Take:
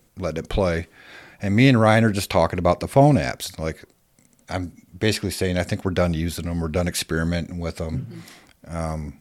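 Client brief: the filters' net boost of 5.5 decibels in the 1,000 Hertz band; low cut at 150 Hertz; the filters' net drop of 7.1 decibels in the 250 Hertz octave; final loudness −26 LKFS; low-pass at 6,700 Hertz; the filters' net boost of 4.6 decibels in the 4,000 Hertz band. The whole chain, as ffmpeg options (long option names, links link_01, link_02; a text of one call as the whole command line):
ffmpeg -i in.wav -af "highpass=150,lowpass=6700,equalizer=frequency=250:width_type=o:gain=-8.5,equalizer=frequency=1000:width_type=o:gain=8,equalizer=frequency=4000:width_type=o:gain=5.5,volume=-4dB" out.wav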